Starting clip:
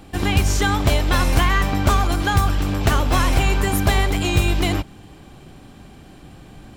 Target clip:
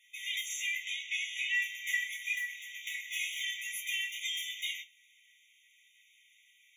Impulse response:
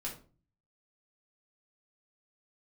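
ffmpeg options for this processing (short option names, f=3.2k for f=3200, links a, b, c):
-filter_complex "[0:a]asettb=1/sr,asplit=3[a][b][c];[a]atrim=end=0.824[d];[b]atrim=start=0.82:end=1.54,asetpts=PTS-STARTPTS,afade=t=in:d=0.004:c=qsin,afade=t=out:st=0.716:d=0.004:c=qsin,lowpass=6.1k[e];[c]atrim=start=1.536[f];[d][e]acrossfade=d=0.004:c1=hsin:c2=qsin[g];[g][f]acrossfade=d=0.004:c1=qsin:c2=hsin,asettb=1/sr,asplit=3[h][i][j];[h]atrim=end=2.364[k];[i]atrim=start=2.36:end=3.04,asetpts=PTS-STARTPTS,afade=t=in:d=0.004:c=qsin,afade=t=out:st=0.676:d=0.004:c=qsin,acompressor=threshold=-16dB:ratio=6[l];[j]atrim=start=3.036[m];[k][l]acrossfade=d=0.004:c1=hsin:c2=qsin[n];[n][m]acrossfade=d=0.004:c1=qsin:c2=hsin,aeval=exprs='val(0)*sin(2*PI*780*n/s)':c=same[o];[1:a]atrim=start_sample=2205,afade=t=out:st=0.28:d=0.01,atrim=end_sample=12789,asetrate=70560,aresample=44100[p];[o][p]afir=irnorm=-1:irlink=0,afftfilt=real='re*eq(mod(floor(b*sr/1024/1900),2),1)':imag='im*eq(mod(floor(b*sr/1024/1900),2),1)':win_size=1024:overlap=0.75"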